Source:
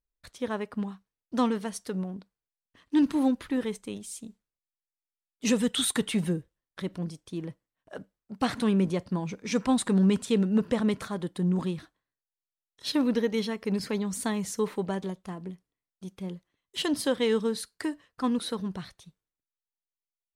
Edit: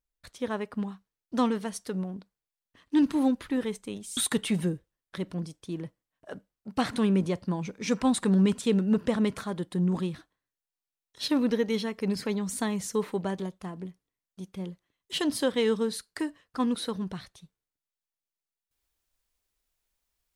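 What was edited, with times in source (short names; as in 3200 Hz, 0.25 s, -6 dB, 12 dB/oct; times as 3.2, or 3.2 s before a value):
4.17–5.81 cut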